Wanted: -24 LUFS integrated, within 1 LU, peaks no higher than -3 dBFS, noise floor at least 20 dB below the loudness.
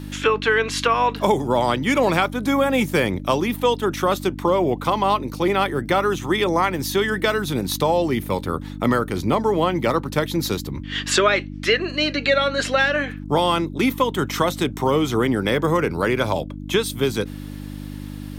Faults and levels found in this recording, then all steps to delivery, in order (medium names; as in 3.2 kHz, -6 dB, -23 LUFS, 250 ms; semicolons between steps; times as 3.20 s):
hum 50 Hz; highest harmonic 300 Hz; hum level -30 dBFS; loudness -21.0 LUFS; peak level -4.0 dBFS; loudness target -24.0 LUFS
-> de-hum 50 Hz, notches 6; trim -3 dB